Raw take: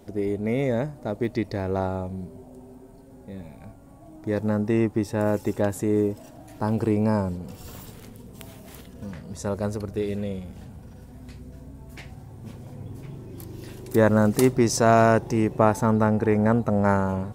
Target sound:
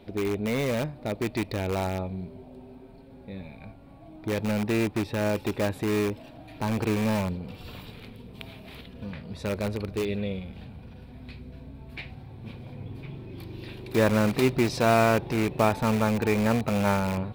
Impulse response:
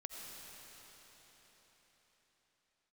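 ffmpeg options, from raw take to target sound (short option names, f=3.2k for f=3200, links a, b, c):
-filter_complex "[0:a]highshelf=f=5.1k:t=q:w=3:g=-9.5,asplit=2[a][b];[b]aeval=exprs='(mod(10*val(0)+1,2)-1)/10':c=same,volume=-7.5dB[c];[a][c]amix=inputs=2:normalize=0,equalizer=f=2.4k:t=o:w=0.22:g=9.5,volume=-4dB"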